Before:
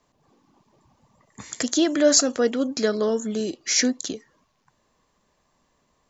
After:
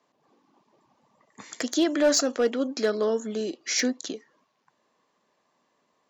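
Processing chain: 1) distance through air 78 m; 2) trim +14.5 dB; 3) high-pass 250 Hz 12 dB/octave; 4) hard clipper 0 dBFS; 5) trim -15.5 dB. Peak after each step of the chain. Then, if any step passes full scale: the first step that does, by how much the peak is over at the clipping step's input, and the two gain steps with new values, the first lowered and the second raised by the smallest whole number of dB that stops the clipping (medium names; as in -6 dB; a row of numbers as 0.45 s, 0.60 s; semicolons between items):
-8.0 dBFS, +6.5 dBFS, +5.5 dBFS, 0.0 dBFS, -15.5 dBFS; step 2, 5.5 dB; step 2 +8.5 dB, step 5 -9.5 dB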